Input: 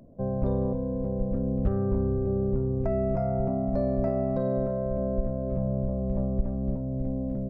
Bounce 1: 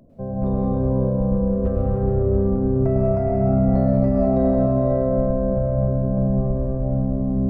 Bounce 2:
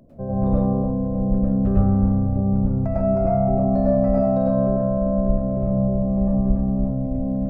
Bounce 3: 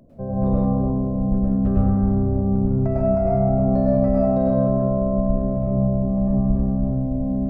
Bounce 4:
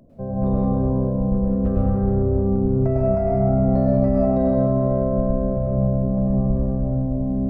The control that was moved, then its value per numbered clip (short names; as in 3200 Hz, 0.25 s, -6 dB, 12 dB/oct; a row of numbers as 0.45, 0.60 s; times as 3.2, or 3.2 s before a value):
plate-style reverb, RT60: 5.1, 0.51, 1.1, 2.2 s